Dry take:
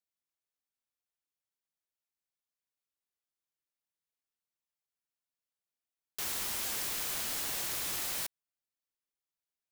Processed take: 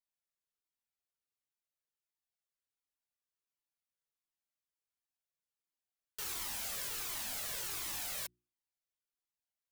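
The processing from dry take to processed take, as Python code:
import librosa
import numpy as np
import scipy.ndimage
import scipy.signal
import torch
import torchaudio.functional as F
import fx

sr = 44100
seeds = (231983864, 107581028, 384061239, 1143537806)

y = fx.hum_notches(x, sr, base_hz=60, count=6)
y = fx.comb_cascade(y, sr, direction='falling', hz=1.4)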